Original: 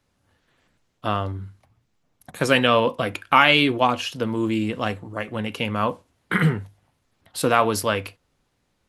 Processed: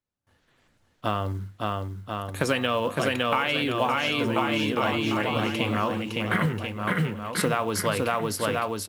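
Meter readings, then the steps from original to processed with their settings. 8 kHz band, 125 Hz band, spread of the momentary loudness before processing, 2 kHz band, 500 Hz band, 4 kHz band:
+0.5 dB, -1.5 dB, 15 LU, -4.0 dB, -3.0 dB, -4.0 dB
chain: on a send: bouncing-ball echo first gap 560 ms, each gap 0.85×, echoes 5; on the sum: compression 16:1, threshold -20 dBFS, peak gain reduction 11.5 dB; gate with hold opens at -57 dBFS; short-mantissa float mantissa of 4-bit

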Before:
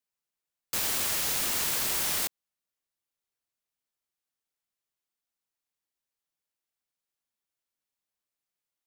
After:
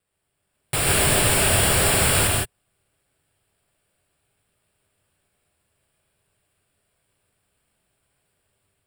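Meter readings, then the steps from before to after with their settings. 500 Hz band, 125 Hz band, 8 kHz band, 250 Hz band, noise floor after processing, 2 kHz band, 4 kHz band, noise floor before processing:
+18.5 dB, +25.0 dB, +10.0 dB, +17.0 dB, -75 dBFS, +13.0 dB, +9.0 dB, under -85 dBFS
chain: treble shelf 8.2 kHz +11.5 dB; sample-and-hold 7×; level rider gain up to 5 dB; saturation -20.5 dBFS, distortion -8 dB; graphic EQ 125/250/1000/2000/4000/8000 Hz +7/-8/-8/-5/-8/+6 dB; gated-style reverb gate 190 ms rising, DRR -1 dB; trim +4 dB

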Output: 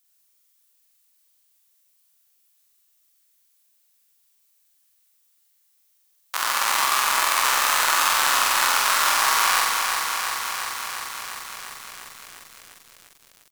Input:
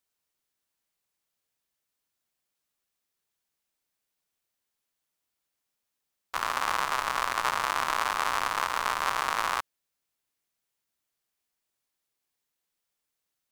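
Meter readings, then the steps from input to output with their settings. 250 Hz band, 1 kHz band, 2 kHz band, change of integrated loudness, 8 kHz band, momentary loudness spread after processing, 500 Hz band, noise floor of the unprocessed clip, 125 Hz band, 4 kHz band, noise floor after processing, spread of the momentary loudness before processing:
+2.5 dB, +6.5 dB, +9.5 dB, +8.0 dB, +17.5 dB, 16 LU, +4.0 dB, -84 dBFS, no reading, +13.5 dB, -65 dBFS, 4 LU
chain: tilt EQ +4 dB/octave; in parallel at -10 dB: saturation -15.5 dBFS, distortion -7 dB; on the sum: doubling 49 ms -14 dB; flutter echo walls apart 7.8 m, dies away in 0.99 s; bit-crushed delay 349 ms, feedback 80%, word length 7-bit, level -5.5 dB; trim -1 dB

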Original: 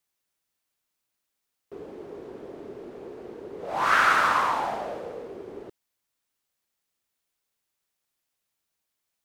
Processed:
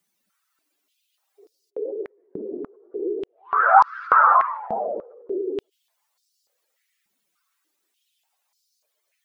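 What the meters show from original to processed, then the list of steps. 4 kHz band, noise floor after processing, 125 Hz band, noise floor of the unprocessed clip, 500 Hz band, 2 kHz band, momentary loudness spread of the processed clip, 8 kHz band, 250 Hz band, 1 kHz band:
under -15 dB, -76 dBFS, no reading, -82 dBFS, +7.0 dB, +0.5 dB, 20 LU, under -15 dB, +6.0 dB, +7.5 dB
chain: spectral contrast enhancement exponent 2.6; reverse echo 332 ms -7.5 dB; step-sequenced high-pass 3.4 Hz 200–4900 Hz; trim +6 dB

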